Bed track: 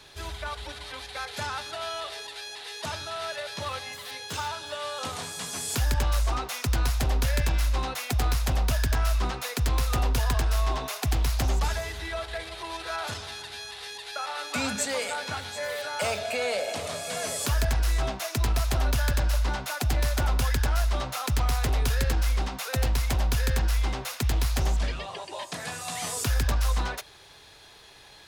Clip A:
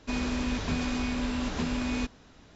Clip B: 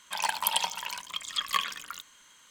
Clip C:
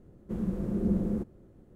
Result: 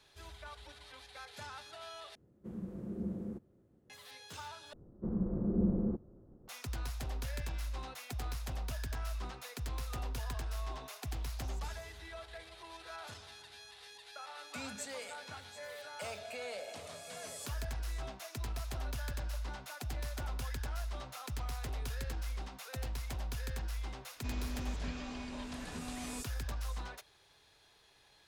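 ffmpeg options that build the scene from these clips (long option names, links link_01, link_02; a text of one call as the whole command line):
ffmpeg -i bed.wav -i cue0.wav -i cue1.wav -i cue2.wav -filter_complex "[3:a]asplit=2[link_01][link_02];[0:a]volume=-14.5dB[link_03];[link_01]highpass=70[link_04];[link_02]lowpass=frequency=1300:width=0.5412,lowpass=frequency=1300:width=1.3066[link_05];[link_03]asplit=3[link_06][link_07][link_08];[link_06]atrim=end=2.154[link_09];[link_04]atrim=end=1.75,asetpts=PTS-STARTPTS,volume=-11dB[link_10];[link_07]atrim=start=3.896:end=4.734[link_11];[link_05]atrim=end=1.75,asetpts=PTS-STARTPTS,volume=-3dB[link_12];[link_08]atrim=start=6.476[link_13];[1:a]atrim=end=2.55,asetpts=PTS-STARTPTS,volume=-13.5dB,afade=type=in:duration=0.004:curve=hsin,afade=type=out:start_time=2.546:duration=0.004:curve=hsin,adelay=24160[link_14];[link_09][link_10]acrossfade=duration=0.004:curve1=hsin:curve2=hsin[link_15];[link_15][link_11]acrossfade=duration=0.004:curve1=hsin:curve2=hsin[link_16];[link_16][link_12]acrossfade=duration=0.004:curve1=hsin:curve2=hsin[link_17];[link_17][link_13]acrossfade=duration=0.004:curve1=hsin:curve2=hsin[link_18];[link_18][link_14]amix=inputs=2:normalize=0" out.wav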